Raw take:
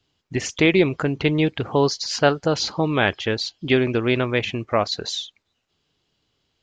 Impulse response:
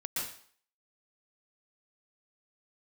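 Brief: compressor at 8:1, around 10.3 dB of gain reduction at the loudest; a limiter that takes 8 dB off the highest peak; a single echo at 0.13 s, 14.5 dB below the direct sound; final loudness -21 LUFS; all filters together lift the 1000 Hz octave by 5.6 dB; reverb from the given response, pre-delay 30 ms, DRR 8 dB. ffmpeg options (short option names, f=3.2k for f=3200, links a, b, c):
-filter_complex "[0:a]equalizer=f=1k:t=o:g=7.5,acompressor=threshold=-20dB:ratio=8,alimiter=limit=-15dB:level=0:latency=1,aecho=1:1:130:0.188,asplit=2[a][b];[1:a]atrim=start_sample=2205,adelay=30[c];[b][c]afir=irnorm=-1:irlink=0,volume=-11.5dB[d];[a][d]amix=inputs=2:normalize=0,volume=5.5dB"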